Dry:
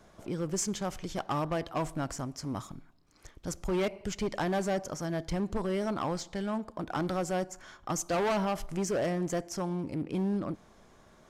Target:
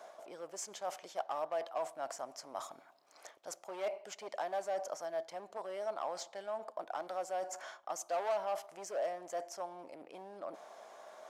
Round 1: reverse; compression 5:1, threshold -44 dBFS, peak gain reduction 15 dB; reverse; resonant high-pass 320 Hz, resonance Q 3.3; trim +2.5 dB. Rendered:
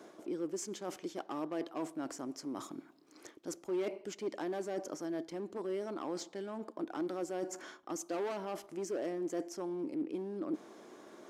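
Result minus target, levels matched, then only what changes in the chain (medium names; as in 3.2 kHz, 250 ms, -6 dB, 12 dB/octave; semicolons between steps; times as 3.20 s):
250 Hz band +17.0 dB
change: resonant high-pass 650 Hz, resonance Q 3.3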